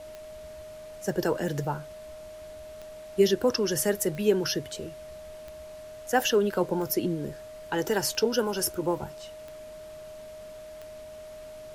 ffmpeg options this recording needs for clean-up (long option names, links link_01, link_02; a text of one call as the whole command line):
ffmpeg -i in.wav -af "adeclick=threshold=4,bandreject=frequency=620:width=30,afftdn=noise_reduction=30:noise_floor=-44" out.wav